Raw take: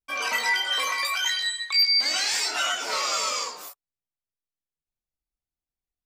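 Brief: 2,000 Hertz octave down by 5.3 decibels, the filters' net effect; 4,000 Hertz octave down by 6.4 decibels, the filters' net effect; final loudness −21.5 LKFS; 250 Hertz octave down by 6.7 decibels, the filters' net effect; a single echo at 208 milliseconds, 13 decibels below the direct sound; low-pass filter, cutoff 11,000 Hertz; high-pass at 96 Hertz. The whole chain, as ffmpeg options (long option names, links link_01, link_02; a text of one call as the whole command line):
ffmpeg -i in.wav -af "highpass=96,lowpass=11000,equalizer=frequency=250:width_type=o:gain=-9,equalizer=frequency=2000:width_type=o:gain=-4.5,equalizer=frequency=4000:width_type=o:gain=-7,aecho=1:1:208:0.224,volume=6.5dB" out.wav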